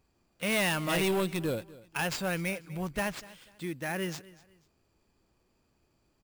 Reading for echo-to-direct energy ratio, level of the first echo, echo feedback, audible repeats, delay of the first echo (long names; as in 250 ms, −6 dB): −19.5 dB, −20.0 dB, 30%, 2, 245 ms